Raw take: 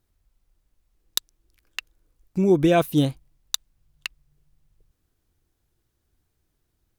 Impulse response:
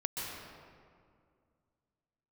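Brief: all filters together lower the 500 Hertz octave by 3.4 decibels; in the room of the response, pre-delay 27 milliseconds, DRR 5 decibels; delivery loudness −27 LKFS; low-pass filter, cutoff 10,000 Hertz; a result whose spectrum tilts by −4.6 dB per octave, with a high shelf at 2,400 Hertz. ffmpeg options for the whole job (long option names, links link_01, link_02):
-filter_complex "[0:a]lowpass=10000,equalizer=frequency=500:width_type=o:gain=-5.5,highshelf=frequency=2400:gain=4.5,asplit=2[link_01][link_02];[1:a]atrim=start_sample=2205,adelay=27[link_03];[link_02][link_03]afir=irnorm=-1:irlink=0,volume=-8.5dB[link_04];[link_01][link_04]amix=inputs=2:normalize=0,volume=-2dB"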